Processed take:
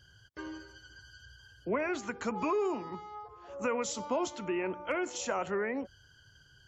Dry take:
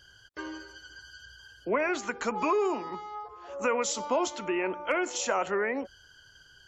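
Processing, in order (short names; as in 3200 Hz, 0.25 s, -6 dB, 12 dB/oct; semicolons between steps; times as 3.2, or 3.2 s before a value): bell 110 Hz +12 dB 2.1 oct; gain -6 dB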